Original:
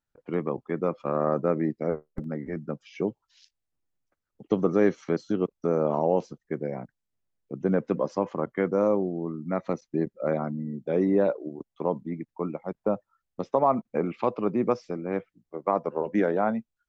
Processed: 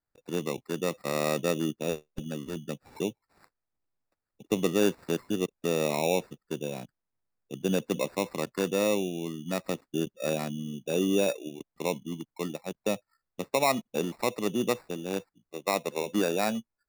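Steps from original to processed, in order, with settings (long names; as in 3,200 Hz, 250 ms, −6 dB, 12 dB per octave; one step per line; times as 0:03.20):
decimation without filtering 14×
level −3 dB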